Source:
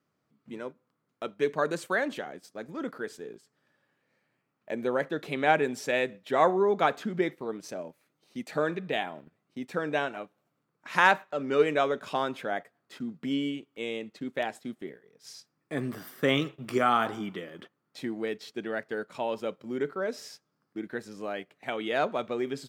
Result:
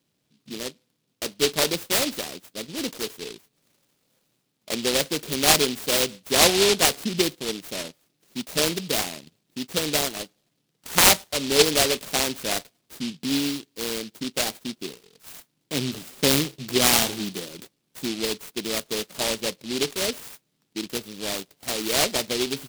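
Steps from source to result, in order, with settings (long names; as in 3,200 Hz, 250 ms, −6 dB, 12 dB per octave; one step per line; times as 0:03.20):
short delay modulated by noise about 3,600 Hz, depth 0.27 ms
level +5 dB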